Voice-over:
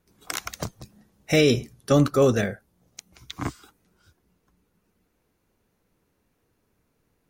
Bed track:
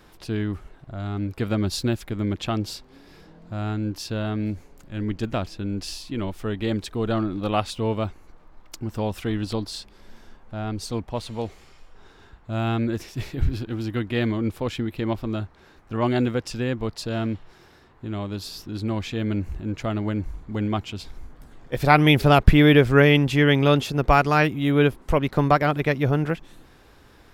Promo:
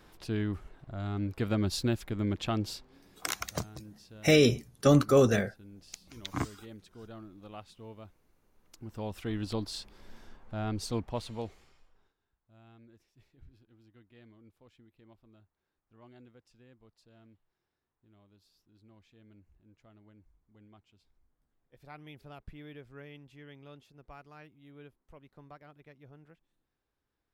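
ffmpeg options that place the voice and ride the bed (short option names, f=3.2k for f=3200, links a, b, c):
-filter_complex "[0:a]adelay=2950,volume=-3dB[a];[1:a]volume=13dB,afade=t=out:st=2.72:d=0.55:silence=0.133352,afade=t=in:st=8.52:d=1.37:silence=0.11885,afade=t=out:st=10.94:d=1.21:silence=0.0354813[b];[a][b]amix=inputs=2:normalize=0"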